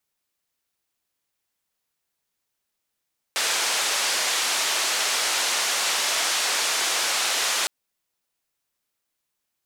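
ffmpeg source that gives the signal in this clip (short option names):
-f lavfi -i "anoisesrc=c=white:d=4.31:r=44100:seed=1,highpass=f=550,lowpass=f=7000,volume=-14dB"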